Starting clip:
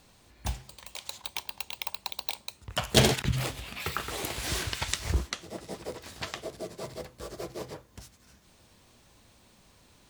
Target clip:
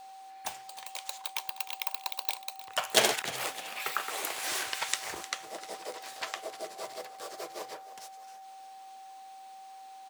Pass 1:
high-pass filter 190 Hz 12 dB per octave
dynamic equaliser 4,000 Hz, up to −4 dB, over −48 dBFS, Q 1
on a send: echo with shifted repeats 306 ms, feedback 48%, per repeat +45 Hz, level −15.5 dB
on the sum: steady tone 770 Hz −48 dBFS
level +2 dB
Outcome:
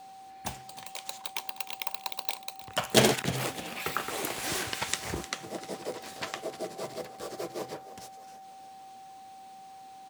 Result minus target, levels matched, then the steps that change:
250 Hz band +11.5 dB
change: high-pass filter 610 Hz 12 dB per octave

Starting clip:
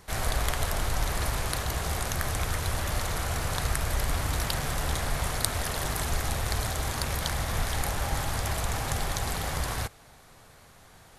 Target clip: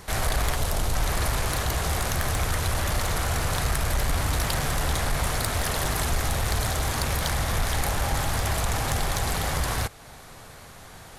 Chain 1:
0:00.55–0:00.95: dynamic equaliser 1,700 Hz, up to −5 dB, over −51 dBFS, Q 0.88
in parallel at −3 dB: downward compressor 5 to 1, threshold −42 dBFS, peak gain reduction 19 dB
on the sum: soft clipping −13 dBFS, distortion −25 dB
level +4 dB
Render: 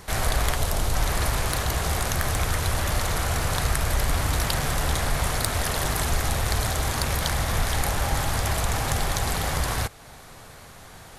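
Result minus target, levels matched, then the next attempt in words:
soft clipping: distortion −7 dB
0:00.55–0:00.95: dynamic equaliser 1,700 Hz, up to −5 dB, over −51 dBFS, Q 0.88
in parallel at −3 dB: downward compressor 5 to 1, threshold −42 dBFS, peak gain reduction 19 dB
on the sum: soft clipping −20 dBFS, distortion −17 dB
level +4 dB

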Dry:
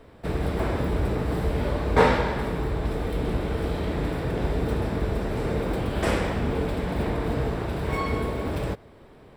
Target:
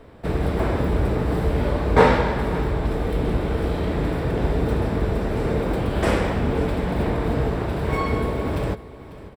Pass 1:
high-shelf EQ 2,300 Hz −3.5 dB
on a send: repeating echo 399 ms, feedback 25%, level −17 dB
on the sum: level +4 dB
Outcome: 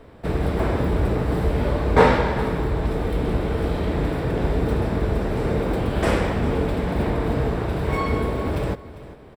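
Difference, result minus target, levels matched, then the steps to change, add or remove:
echo 147 ms early
change: repeating echo 546 ms, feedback 25%, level −17 dB

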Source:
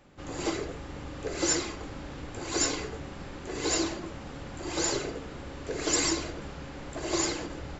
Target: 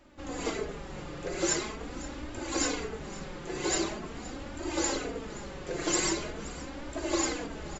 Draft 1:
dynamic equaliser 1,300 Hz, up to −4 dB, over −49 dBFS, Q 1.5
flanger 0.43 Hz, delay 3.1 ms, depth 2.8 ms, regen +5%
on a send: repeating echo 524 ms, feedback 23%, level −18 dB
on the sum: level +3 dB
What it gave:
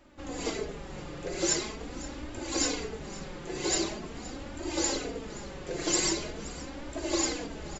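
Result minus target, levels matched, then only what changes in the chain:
1,000 Hz band −2.5 dB
change: dynamic equaliser 5,000 Hz, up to −4 dB, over −49 dBFS, Q 1.5

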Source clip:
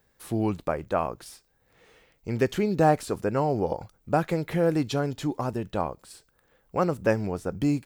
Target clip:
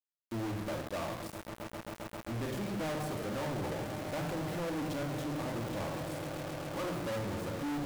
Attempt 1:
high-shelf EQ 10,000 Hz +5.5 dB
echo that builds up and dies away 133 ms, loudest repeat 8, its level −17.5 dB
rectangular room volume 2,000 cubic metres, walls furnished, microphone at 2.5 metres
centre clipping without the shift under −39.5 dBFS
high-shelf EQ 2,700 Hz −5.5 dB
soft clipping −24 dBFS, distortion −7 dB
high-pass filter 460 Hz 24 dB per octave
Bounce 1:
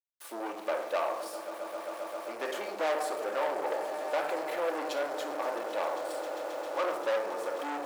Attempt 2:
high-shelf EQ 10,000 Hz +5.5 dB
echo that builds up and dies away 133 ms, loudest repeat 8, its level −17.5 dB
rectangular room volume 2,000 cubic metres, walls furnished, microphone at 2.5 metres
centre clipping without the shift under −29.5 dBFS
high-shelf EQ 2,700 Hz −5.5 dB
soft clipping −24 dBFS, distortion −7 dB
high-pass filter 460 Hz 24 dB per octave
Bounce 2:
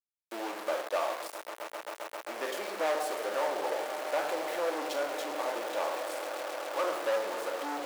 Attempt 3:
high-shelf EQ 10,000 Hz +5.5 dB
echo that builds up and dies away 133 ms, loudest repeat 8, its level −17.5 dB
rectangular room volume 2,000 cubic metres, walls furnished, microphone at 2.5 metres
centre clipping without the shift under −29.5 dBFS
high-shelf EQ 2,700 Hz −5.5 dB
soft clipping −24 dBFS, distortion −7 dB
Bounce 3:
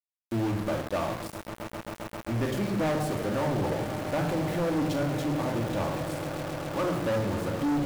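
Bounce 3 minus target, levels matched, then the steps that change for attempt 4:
soft clipping: distortion −4 dB
change: soft clipping −34 dBFS, distortion −4 dB

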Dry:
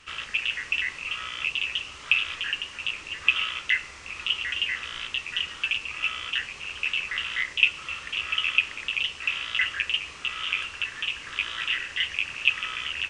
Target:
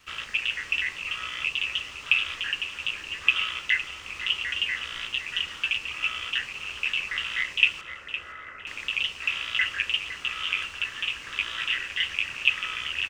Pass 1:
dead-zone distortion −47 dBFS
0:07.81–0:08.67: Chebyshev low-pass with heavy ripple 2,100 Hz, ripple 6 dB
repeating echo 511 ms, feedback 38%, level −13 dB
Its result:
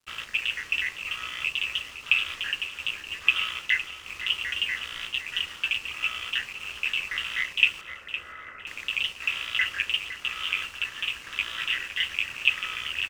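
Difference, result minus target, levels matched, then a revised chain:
dead-zone distortion: distortion +11 dB
dead-zone distortion −58.5 dBFS
0:07.81–0:08.67: Chebyshev low-pass with heavy ripple 2,100 Hz, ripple 6 dB
repeating echo 511 ms, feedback 38%, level −13 dB

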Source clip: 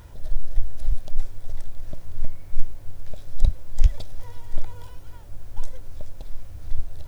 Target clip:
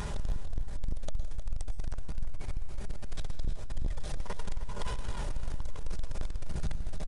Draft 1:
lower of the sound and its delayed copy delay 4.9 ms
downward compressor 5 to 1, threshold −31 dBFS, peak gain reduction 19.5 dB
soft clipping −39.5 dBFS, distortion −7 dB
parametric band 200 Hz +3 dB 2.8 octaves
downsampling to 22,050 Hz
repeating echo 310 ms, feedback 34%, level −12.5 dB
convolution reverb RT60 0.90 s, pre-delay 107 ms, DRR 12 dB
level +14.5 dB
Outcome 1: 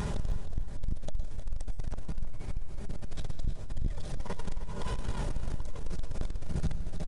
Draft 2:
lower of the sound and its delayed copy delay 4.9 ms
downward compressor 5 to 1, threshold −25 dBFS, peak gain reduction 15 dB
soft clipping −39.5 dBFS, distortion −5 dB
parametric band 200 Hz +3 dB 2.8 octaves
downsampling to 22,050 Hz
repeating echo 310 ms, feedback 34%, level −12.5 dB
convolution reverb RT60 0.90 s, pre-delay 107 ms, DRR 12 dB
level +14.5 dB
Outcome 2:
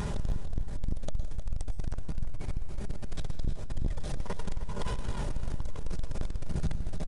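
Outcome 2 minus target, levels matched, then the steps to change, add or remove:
250 Hz band +3.5 dB
change: parametric band 200 Hz −3.5 dB 2.8 octaves

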